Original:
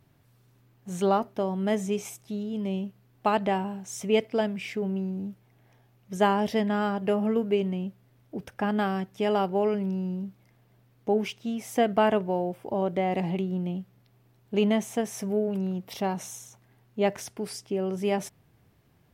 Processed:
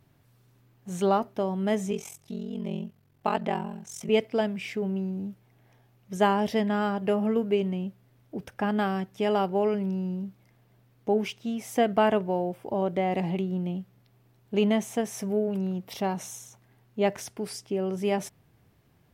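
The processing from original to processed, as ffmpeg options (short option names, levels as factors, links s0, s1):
-filter_complex "[0:a]asettb=1/sr,asplit=3[s0][s1][s2];[s0]atrim=end=1.914[s3];[s1]atrim=start=1.91:end=4.09,asetpts=PTS-STARTPTS,afade=t=in:d=0.004:c=qsin,afade=t=out:st=2.176:d=0.004:c=qsin,aeval=exprs='val(0)*sin(2*PI*22*n/s)':c=same[s4];[s2]atrim=start=4.086[s5];[s3][s4]acrossfade=d=0.004:c1=hsin:c2=qsin[s6];[s6][s5]acrossfade=d=0.004:c1=qsin:c2=hsin"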